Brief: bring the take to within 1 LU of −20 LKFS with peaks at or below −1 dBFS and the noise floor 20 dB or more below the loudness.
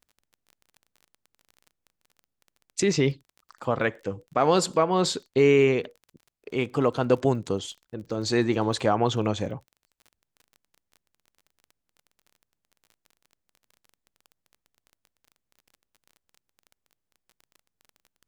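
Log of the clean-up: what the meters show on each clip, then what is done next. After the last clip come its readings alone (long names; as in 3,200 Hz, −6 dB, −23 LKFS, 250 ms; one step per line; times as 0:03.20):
crackle rate 24 per second; integrated loudness −25.0 LKFS; sample peak −8.0 dBFS; target loudness −20.0 LKFS
→ click removal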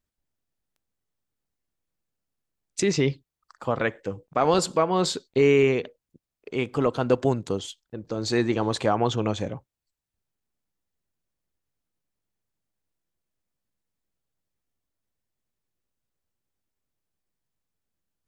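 crackle rate 0.11 per second; integrated loudness −24.5 LKFS; sample peak −8.0 dBFS; target loudness −20.0 LKFS
→ level +4.5 dB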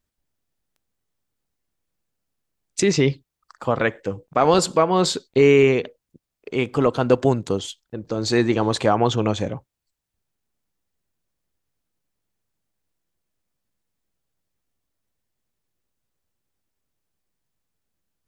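integrated loudness −20.0 LKFS; sample peak −3.5 dBFS; background noise floor −83 dBFS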